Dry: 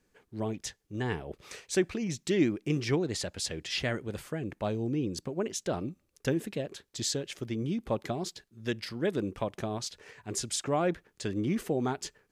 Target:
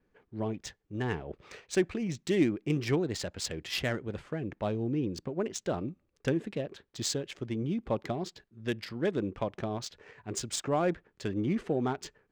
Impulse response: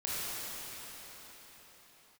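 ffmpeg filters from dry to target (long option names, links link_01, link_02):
-af "adynamicsmooth=sensitivity=6.5:basefreq=2800,adynamicequalizer=threshold=0.00158:dfrequency=7600:dqfactor=2.6:tfrequency=7600:tqfactor=2.6:attack=5:release=100:ratio=0.375:range=2.5:mode=boostabove:tftype=bell"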